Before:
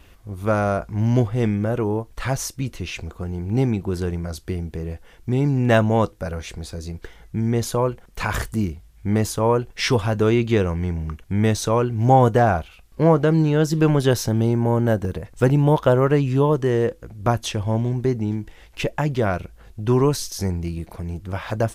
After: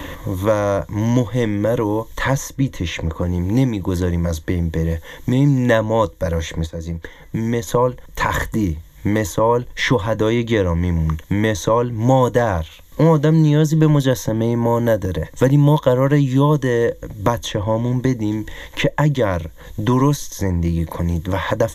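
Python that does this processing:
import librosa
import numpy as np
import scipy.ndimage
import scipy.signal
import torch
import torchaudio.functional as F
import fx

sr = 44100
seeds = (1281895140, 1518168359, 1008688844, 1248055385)

y = fx.upward_expand(x, sr, threshold_db=-37.0, expansion=1.5, at=(6.65, 7.67), fade=0.02)
y = fx.ripple_eq(y, sr, per_octave=1.1, db=12)
y = fx.band_squash(y, sr, depth_pct=70)
y = y * 10.0 ** (1.5 / 20.0)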